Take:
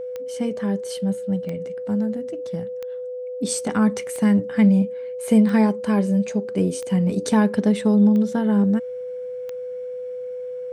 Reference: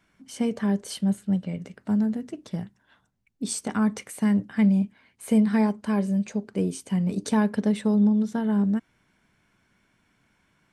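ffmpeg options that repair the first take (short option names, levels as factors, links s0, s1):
-af "adeclick=t=4,bandreject=f=500:w=30,asetnsamples=n=441:p=0,asendcmd='3.39 volume volume -4.5dB',volume=1"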